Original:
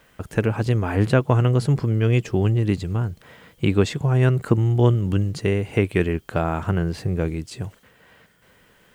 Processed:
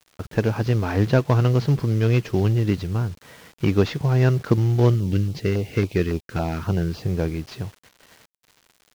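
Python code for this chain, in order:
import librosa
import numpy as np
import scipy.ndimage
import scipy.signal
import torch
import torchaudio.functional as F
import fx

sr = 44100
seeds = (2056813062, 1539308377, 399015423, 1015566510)

y = fx.cvsd(x, sr, bps=32000)
y = fx.quant_dither(y, sr, seeds[0], bits=8, dither='none')
y = fx.filter_lfo_notch(y, sr, shape='saw_down', hz=3.6, low_hz=510.0, high_hz=2200.0, q=1.2, at=(4.94, 7.02), fade=0.02)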